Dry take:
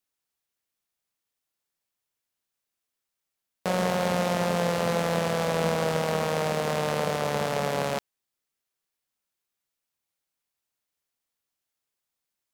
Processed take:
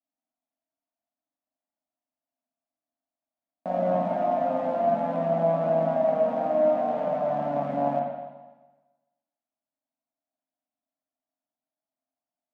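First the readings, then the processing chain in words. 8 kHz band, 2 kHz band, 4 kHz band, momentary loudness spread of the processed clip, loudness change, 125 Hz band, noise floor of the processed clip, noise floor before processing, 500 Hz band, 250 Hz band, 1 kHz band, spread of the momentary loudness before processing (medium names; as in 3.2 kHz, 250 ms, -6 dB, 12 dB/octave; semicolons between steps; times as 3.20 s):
under -30 dB, -13.0 dB, under -20 dB, 7 LU, +1.5 dB, -5.5 dB, under -85 dBFS, -85 dBFS, +3.0 dB, -0.5 dB, +2.5 dB, 3 LU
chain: two resonant band-passes 420 Hz, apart 1.3 oct; spring tank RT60 1.2 s, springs 42/55 ms, chirp 60 ms, DRR -2.5 dB; trim +5.5 dB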